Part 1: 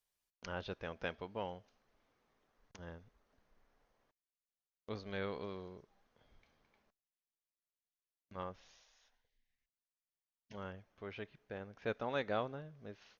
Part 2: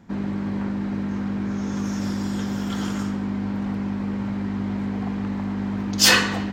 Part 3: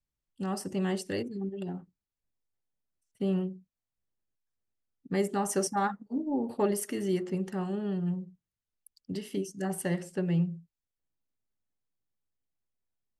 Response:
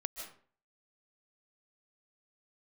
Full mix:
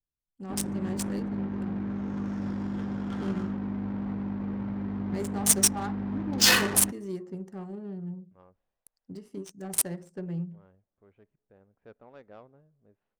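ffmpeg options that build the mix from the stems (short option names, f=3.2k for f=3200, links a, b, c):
-filter_complex "[0:a]volume=-11.5dB[a];[1:a]adelay=400,volume=-6dB[b];[2:a]aexciter=amount=7.7:drive=7:freq=4.9k,volume=-6dB[c];[a][b][c]amix=inputs=3:normalize=0,adynamicsmooth=sensitivity=4:basefreq=960,crystalizer=i=1:c=0"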